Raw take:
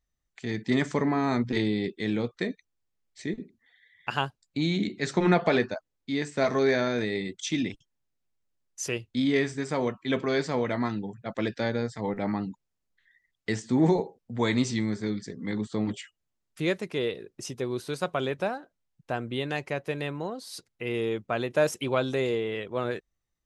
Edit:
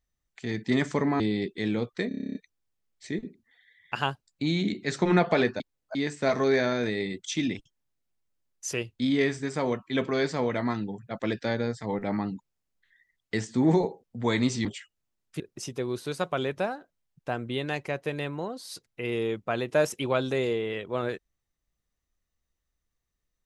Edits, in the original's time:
1.20–1.62 s: delete
2.50 s: stutter 0.03 s, 10 plays
5.75–6.10 s: reverse
14.80–15.88 s: delete
16.63–17.22 s: delete

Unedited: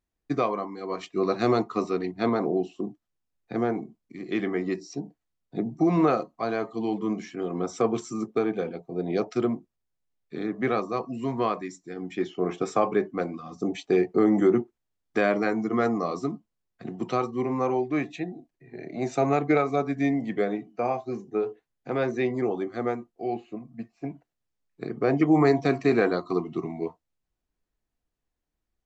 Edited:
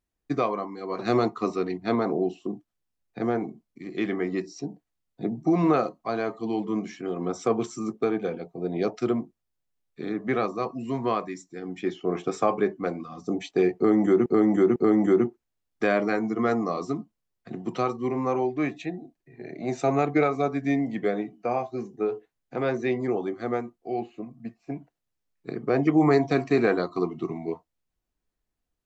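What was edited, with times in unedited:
0.99–1.33 s: delete
14.10–14.60 s: loop, 3 plays

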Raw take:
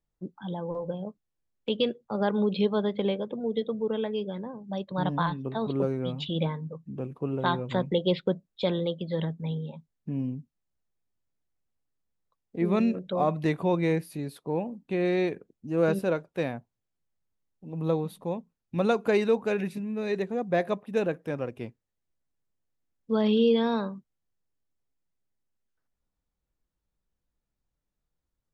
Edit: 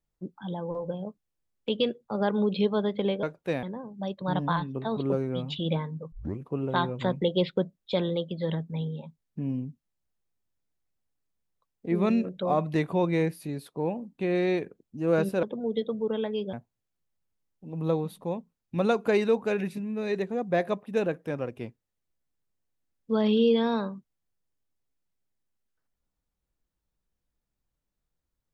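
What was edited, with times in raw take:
3.23–4.33 s: swap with 16.13–16.53 s
6.82 s: tape start 0.26 s

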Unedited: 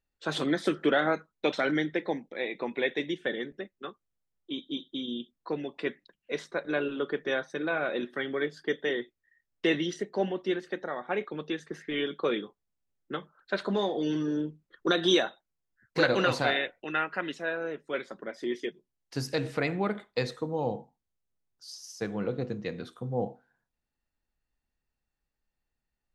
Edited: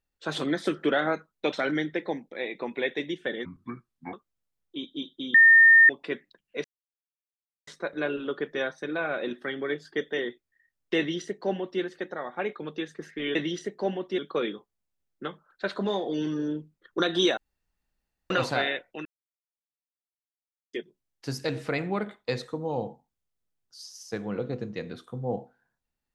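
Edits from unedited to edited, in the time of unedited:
3.45–3.88 s: speed 63%
5.09–5.64 s: bleep 1.82 kHz -11.5 dBFS
6.39 s: insert silence 1.03 s
9.70–10.53 s: copy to 12.07 s
15.26–16.19 s: room tone
16.94–18.62 s: mute

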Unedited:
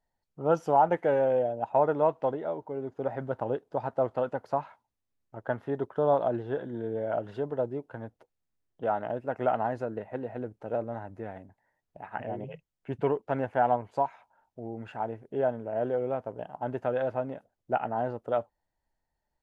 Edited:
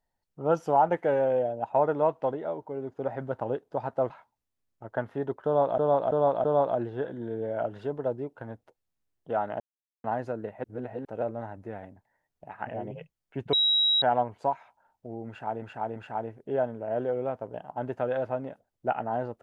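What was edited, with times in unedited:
4.10–4.62 s: delete
5.97–6.30 s: loop, 4 plays
9.13–9.57 s: mute
10.17–10.58 s: reverse
13.06–13.55 s: bleep 3.85 kHz -20 dBFS
14.81–15.15 s: loop, 3 plays

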